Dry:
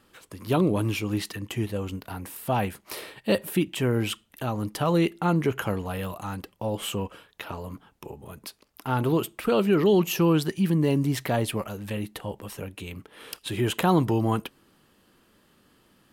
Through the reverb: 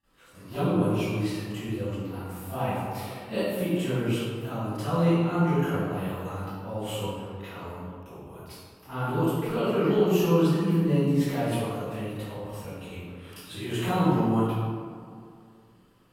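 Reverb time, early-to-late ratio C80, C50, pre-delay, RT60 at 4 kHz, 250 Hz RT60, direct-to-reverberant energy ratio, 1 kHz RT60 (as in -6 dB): 2.2 s, -3.0 dB, -8.0 dB, 32 ms, 0.95 s, 2.4 s, -20.5 dB, 2.2 s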